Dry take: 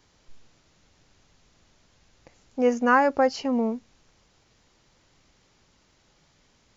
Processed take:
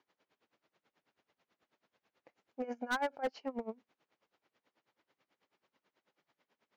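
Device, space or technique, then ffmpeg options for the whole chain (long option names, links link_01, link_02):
helicopter radio: -filter_complex "[0:a]asettb=1/sr,asplit=3[link_01][link_02][link_03];[link_01]atrim=end=2.644[link_04];[link_02]atrim=start=2.64:end=3.27,asetpts=PTS-STARTPTS,afade=type=in:duration=0.004:curve=qsin,afade=type=out:start_time=0.626:duration=0.004:curve=qsin,aecho=1:1:1.3:0.62,atrim=end_sample=27783[link_05];[link_03]atrim=start=3.266[link_06];[link_04][link_05]acrossfade=duration=0.004:curve1=hsin:curve2=qsin[link_07];[link_07][link_06]acrossfade=duration=0.004:curve1=qsin:curve2=hsin,highpass=310,lowpass=2800,aeval=exprs='val(0)*pow(10,-22*(0.5-0.5*cos(2*PI*9.2*n/s))/20)':channel_layout=same,asoftclip=type=hard:threshold=-22.5dB,volume=-6.5dB"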